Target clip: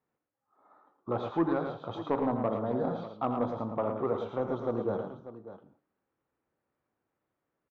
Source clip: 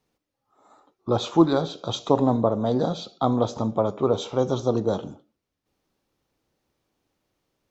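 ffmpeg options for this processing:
ffmpeg -i in.wav -af "highpass=frequency=110:poles=1,flanger=delay=7.8:depth=4.5:regen=-84:speed=0.72:shape=sinusoidal,lowpass=frequency=1600:width_type=q:width=1.5,asoftclip=type=tanh:threshold=-14dB,aecho=1:1:83|111|593:0.282|0.447|0.211,volume=-4dB" out.wav

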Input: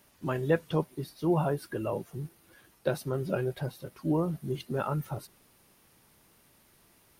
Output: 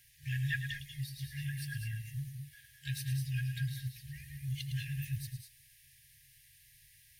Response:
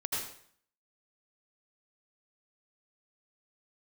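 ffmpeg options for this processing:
-filter_complex "[0:a]asplit=2[link_01][link_02];[1:a]atrim=start_sample=2205,afade=type=out:start_time=0.17:duration=0.01,atrim=end_sample=7938,adelay=108[link_03];[link_02][link_03]afir=irnorm=-1:irlink=0,volume=-7.5dB[link_04];[link_01][link_04]amix=inputs=2:normalize=0,asplit=2[link_05][link_06];[link_06]asetrate=88200,aresample=44100,atempo=0.5,volume=-17dB[link_07];[link_05][link_07]amix=inputs=2:normalize=0,afftfilt=real='re*(1-between(b*sr/4096,150,1600))':imag='im*(1-between(b*sr/4096,150,1600))':win_size=4096:overlap=0.75,volume=1dB"

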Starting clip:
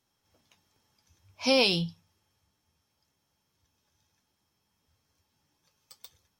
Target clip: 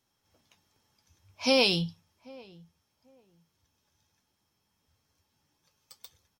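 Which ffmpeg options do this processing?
ffmpeg -i in.wav -filter_complex "[0:a]asplit=2[link_01][link_02];[link_02]adelay=790,lowpass=frequency=1100:poles=1,volume=-22dB,asplit=2[link_03][link_04];[link_04]adelay=790,lowpass=frequency=1100:poles=1,volume=0.22[link_05];[link_01][link_03][link_05]amix=inputs=3:normalize=0" out.wav

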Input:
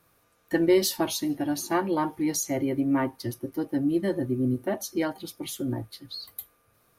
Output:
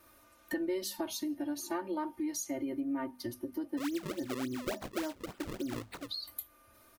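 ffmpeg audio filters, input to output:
ffmpeg -i in.wav -filter_complex "[0:a]bandreject=frequency=50:width_type=h:width=6,bandreject=frequency=100:width_type=h:width=6,bandreject=frequency=150:width_type=h:width=6,bandreject=frequency=200:width_type=h:width=6,bandreject=frequency=250:width_type=h:width=6,aecho=1:1:3.3:1,acompressor=threshold=-40dB:ratio=3,asplit=3[link_01][link_02][link_03];[link_01]afade=type=out:start_time=3.77:duration=0.02[link_04];[link_02]acrusher=samples=33:mix=1:aa=0.000001:lfo=1:lforange=52.8:lforate=3.5,afade=type=in:start_time=3.77:duration=0.02,afade=type=out:start_time=6.07:duration=0.02[link_05];[link_03]afade=type=in:start_time=6.07:duration=0.02[link_06];[link_04][link_05][link_06]amix=inputs=3:normalize=0,volume=1dB" out.wav

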